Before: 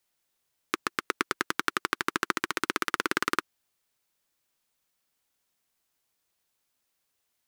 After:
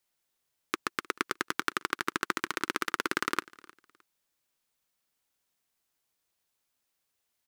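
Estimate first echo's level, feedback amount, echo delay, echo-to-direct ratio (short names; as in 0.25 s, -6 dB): -23.0 dB, 26%, 0.308 s, -22.5 dB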